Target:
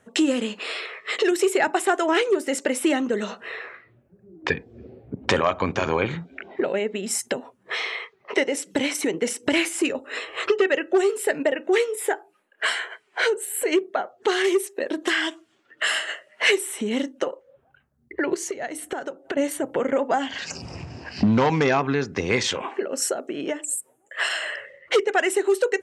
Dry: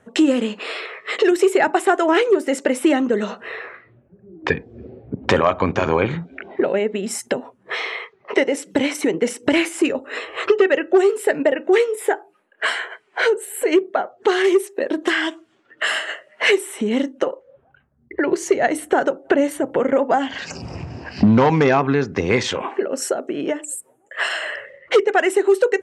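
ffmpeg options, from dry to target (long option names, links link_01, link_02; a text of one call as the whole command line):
ffmpeg -i in.wav -filter_complex "[0:a]highshelf=frequency=2500:gain=8,asettb=1/sr,asplit=3[link_01][link_02][link_03];[link_01]atrim=end=18.344[link_04];[link_02]atrim=start=18.34:end=19.37,asetpts=PTS-STARTPTS,afade=type=in:duration=0.004:curve=qsin,afade=type=out:start_time=1.026:duration=0.004:curve=qsin,acompressor=threshold=-23dB:ratio=4[link_05];[link_03]atrim=start=19.366[link_06];[link_04][link_05]acrossfade=duration=0.004:curve1=hsin:curve2=qsin[link_07];[link_07][link_06]acrossfade=duration=0.004:curve1=qsin:curve2=hsin,volume=-5.5dB" out.wav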